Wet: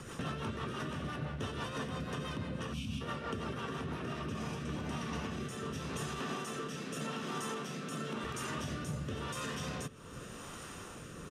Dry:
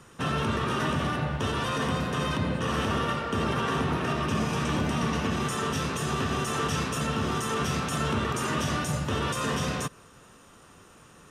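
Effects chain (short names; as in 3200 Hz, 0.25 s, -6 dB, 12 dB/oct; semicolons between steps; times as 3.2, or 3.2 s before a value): 2.73–3.01 spectral gain 300–2200 Hz -28 dB; 6.19–8.24 HPF 160 Hz 24 dB/oct; compressor 20:1, threshold -42 dBFS, peak gain reduction 19.5 dB; rotary speaker horn 6 Hz, later 0.9 Hz, at 3.85; feedback echo 0.799 s, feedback 44%, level -19 dB; gain +8.5 dB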